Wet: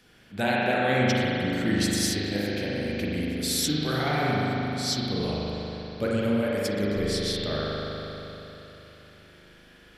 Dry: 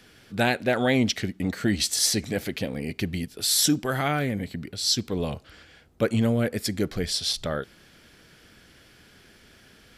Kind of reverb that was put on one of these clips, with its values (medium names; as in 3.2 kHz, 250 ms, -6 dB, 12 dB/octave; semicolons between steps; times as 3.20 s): spring tank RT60 3.6 s, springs 39 ms, chirp 25 ms, DRR -6 dB; trim -6 dB